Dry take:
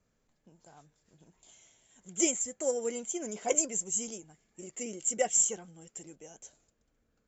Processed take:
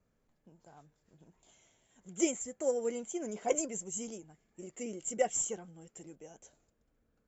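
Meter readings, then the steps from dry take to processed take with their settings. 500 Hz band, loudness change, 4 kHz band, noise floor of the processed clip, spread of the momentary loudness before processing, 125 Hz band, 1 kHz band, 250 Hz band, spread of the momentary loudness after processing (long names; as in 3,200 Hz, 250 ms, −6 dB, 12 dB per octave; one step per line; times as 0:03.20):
−0.5 dB, −5.0 dB, −6.0 dB, −77 dBFS, 21 LU, 0.0 dB, −0.5 dB, 0.0 dB, 20 LU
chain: high-shelf EQ 2,600 Hz −9 dB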